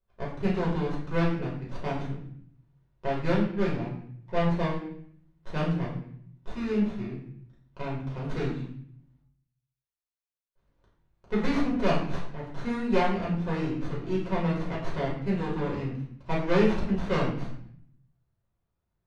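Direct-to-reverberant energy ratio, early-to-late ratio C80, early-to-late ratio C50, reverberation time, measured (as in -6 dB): -5.5 dB, 7.5 dB, 4.0 dB, 0.60 s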